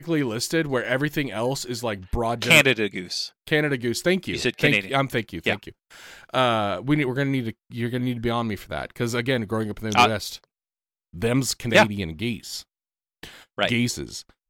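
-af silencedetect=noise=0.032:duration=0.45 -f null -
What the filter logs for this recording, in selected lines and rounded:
silence_start: 5.69
silence_end: 6.34 | silence_duration: 0.65
silence_start: 10.35
silence_end: 11.22 | silence_duration: 0.87
silence_start: 12.60
silence_end: 13.23 | silence_duration: 0.64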